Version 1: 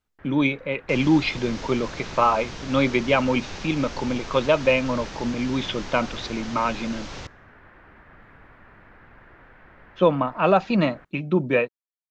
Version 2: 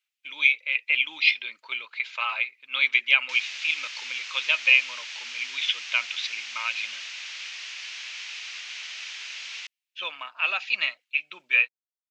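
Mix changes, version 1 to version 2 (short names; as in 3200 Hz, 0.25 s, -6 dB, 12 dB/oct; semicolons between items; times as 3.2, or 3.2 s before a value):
first sound: muted; second sound: entry +2.40 s; master: add resonant high-pass 2500 Hz, resonance Q 2.7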